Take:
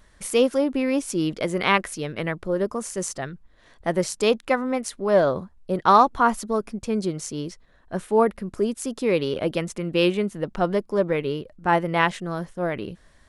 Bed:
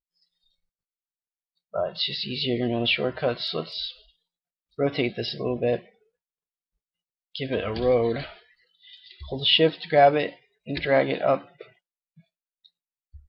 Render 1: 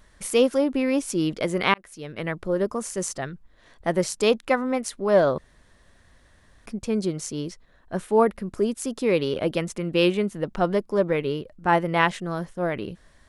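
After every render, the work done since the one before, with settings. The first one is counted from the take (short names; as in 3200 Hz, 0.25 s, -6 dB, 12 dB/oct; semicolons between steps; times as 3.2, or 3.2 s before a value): 1.74–2.4 fade in; 5.38–6.66 room tone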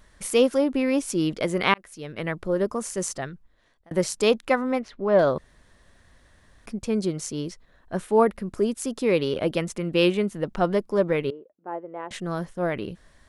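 3.14–3.91 fade out; 4.79–5.19 air absorption 270 m; 11.3–12.11 ladder band-pass 510 Hz, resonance 25%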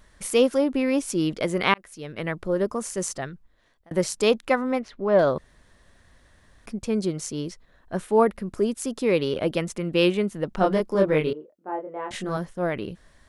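10.56–12.37 doubler 26 ms -2 dB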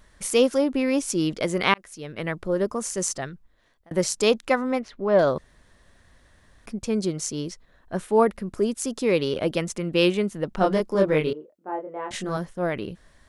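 dynamic EQ 6300 Hz, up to +5 dB, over -47 dBFS, Q 1.1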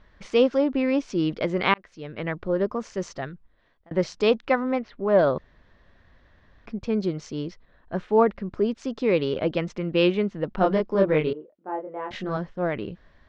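Bessel low-pass 3100 Hz, order 6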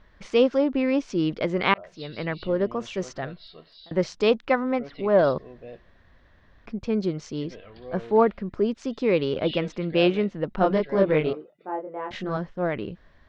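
add bed -18 dB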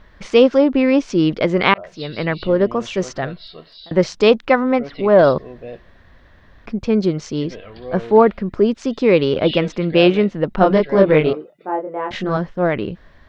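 gain +8.5 dB; limiter -1 dBFS, peak gain reduction 3 dB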